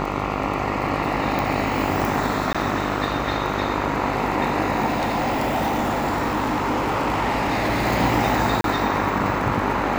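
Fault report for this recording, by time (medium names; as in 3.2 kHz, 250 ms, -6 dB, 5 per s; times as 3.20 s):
buzz 50 Hz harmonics 28 -27 dBFS
crackle 22 per s
1.39 s: pop
2.53–2.55 s: dropout 16 ms
4.86–7.87 s: clipped -18 dBFS
8.61–8.64 s: dropout 32 ms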